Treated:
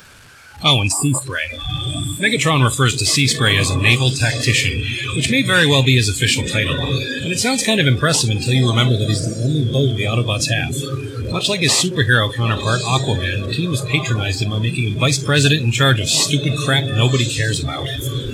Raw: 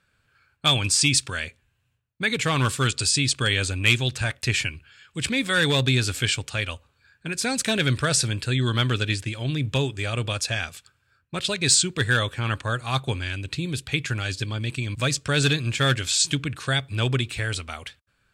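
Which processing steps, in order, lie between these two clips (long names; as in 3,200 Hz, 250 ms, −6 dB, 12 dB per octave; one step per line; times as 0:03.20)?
linear delta modulator 64 kbit/s, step −26.5 dBFS
0:00.92–0:01.21: gain on a spectral selection 1,300–7,000 Hz −14 dB
0:08.89–0:09.88: flat-topped bell 1,600 Hz −10.5 dB 2.3 octaves
in parallel at −3 dB: soft clipping −16.5 dBFS, distortion −16 dB
on the sum: feedback delay with all-pass diffusion 1,142 ms, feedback 40%, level −7.5 dB
noise reduction from a noise print of the clip's start 20 dB
level +4 dB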